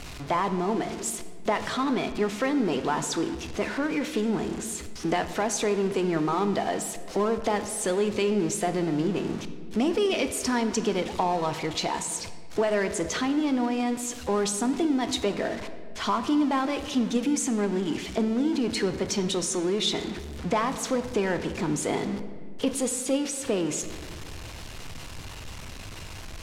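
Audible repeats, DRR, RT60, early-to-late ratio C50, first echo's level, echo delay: none, 9.0 dB, 1.8 s, 11.0 dB, none, none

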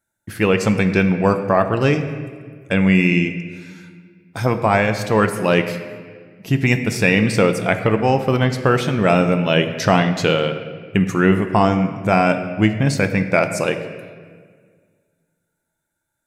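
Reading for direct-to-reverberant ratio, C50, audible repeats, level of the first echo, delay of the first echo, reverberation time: 7.0 dB, 9.5 dB, none, none, none, 1.8 s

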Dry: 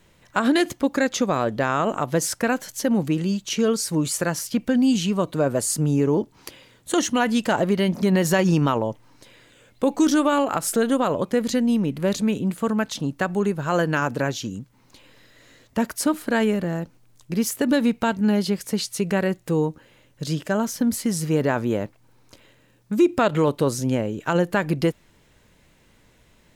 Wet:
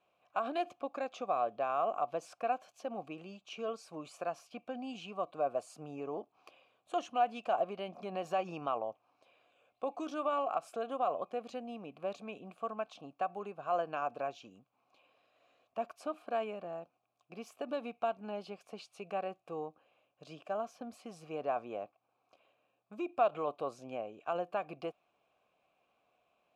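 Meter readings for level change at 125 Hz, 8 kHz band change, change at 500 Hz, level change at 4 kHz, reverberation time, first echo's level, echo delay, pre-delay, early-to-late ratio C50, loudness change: -29.5 dB, under -30 dB, -13.0 dB, -20.5 dB, none, none, none, none, none, -15.5 dB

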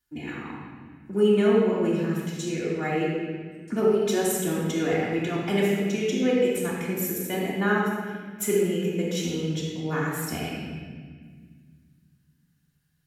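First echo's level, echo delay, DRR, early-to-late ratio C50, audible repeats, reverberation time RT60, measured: none, none, -8.0 dB, -1.0 dB, none, 1.7 s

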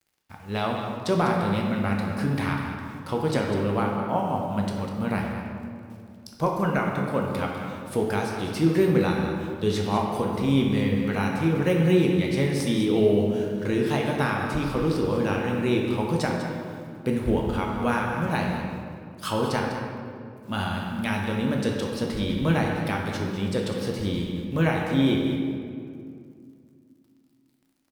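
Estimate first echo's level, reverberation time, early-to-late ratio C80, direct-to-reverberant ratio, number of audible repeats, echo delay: -10.5 dB, 2.4 s, 2.5 dB, -0.5 dB, 1, 0.199 s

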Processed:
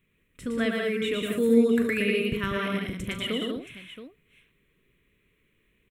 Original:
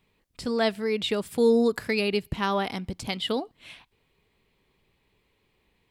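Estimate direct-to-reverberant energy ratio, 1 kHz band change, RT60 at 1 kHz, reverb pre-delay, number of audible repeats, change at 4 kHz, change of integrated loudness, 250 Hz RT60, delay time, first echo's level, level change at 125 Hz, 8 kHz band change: none, -6.5 dB, none, none, 6, -2.0 dB, 0.0 dB, none, 40 ms, -13.5 dB, +1.5 dB, -0.5 dB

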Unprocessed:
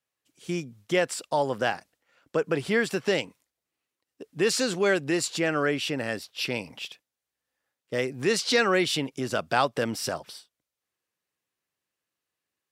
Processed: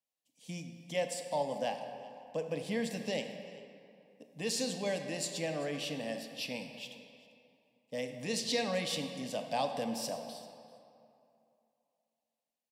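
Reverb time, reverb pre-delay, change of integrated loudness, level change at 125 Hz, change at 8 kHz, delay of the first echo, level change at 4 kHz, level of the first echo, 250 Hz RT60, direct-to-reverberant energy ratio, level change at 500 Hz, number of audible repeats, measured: 2.7 s, 24 ms, -10.0 dB, -9.0 dB, -7.0 dB, 0.39 s, -8.0 dB, -21.0 dB, 2.5 s, 6.0 dB, -9.5 dB, 1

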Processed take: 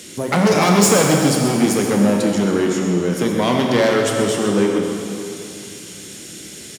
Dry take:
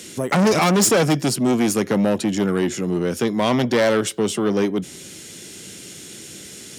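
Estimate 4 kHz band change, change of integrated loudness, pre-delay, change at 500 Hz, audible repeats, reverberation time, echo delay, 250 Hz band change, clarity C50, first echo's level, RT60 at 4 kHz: +3.0 dB, +2.5 dB, 16 ms, +3.0 dB, 1, 2.7 s, 0.127 s, +3.0 dB, 1.5 dB, -10.5 dB, 2.5 s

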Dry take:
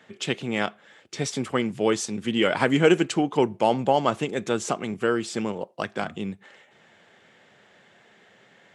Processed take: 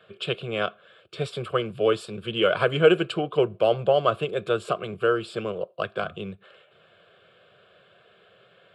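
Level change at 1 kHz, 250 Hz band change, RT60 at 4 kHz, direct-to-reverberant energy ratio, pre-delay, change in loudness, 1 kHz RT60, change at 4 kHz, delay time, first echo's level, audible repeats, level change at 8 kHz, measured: -2.0 dB, -6.0 dB, none, none, none, 0.0 dB, none, +0.5 dB, none, none, none, under -15 dB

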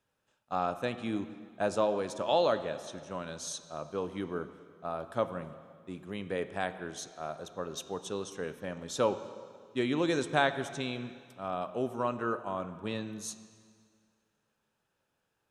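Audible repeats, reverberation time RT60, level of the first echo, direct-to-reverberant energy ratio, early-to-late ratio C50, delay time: none, 2.0 s, none, 10.5 dB, 12.0 dB, none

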